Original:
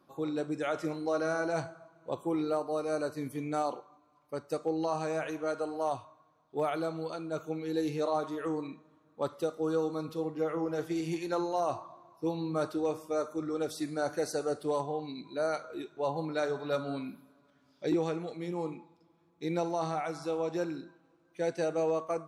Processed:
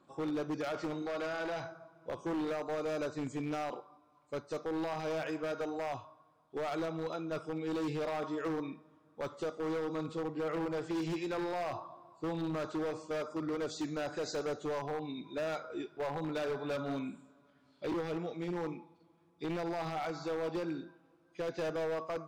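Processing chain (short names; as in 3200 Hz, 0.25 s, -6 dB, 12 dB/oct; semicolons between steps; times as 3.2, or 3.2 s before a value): nonlinear frequency compression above 3200 Hz 1.5:1; limiter -26 dBFS, peak gain reduction 5.5 dB; wavefolder -30 dBFS; 1.02–1.72 overdrive pedal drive 5 dB, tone 6700 Hz, clips at -30 dBFS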